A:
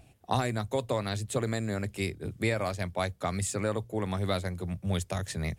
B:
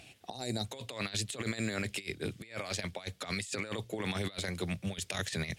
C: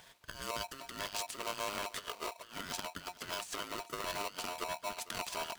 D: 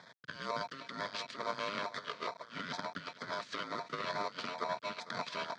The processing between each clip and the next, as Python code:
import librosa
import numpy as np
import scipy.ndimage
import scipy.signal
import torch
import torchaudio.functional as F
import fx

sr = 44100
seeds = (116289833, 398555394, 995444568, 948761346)

y1 = fx.spec_box(x, sr, start_s=0.3, length_s=0.35, low_hz=920.0, high_hz=3700.0, gain_db=-14)
y1 = fx.weighting(y1, sr, curve='D')
y1 = fx.over_compress(y1, sr, threshold_db=-34.0, ratio=-0.5)
y1 = y1 * 10.0 ** (-2.0 / 20.0)
y2 = y1 + 10.0 ** (-18.0 / 20.0) * np.pad(y1, (int(451 * sr / 1000.0), 0))[:len(y1)]
y2 = y2 * np.sign(np.sin(2.0 * np.pi * 810.0 * np.arange(len(y2)) / sr))
y2 = y2 * 10.0 ** (-4.0 / 20.0)
y3 = fx.quant_companded(y2, sr, bits=4)
y3 = fx.filter_lfo_notch(y3, sr, shape='square', hz=2.2, low_hz=800.0, high_hz=2800.0, q=1.7)
y3 = fx.cabinet(y3, sr, low_hz=130.0, low_slope=24, high_hz=4200.0, hz=(350.0, 780.0, 2800.0), db=(-9, -4, -9))
y3 = y3 * 10.0 ** (4.5 / 20.0)